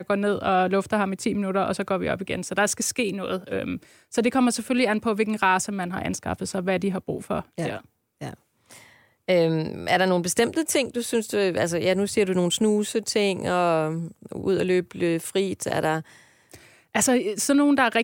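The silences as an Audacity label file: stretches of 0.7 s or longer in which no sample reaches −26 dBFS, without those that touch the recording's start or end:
8.290000	9.290000	silence
16.000000	16.950000	silence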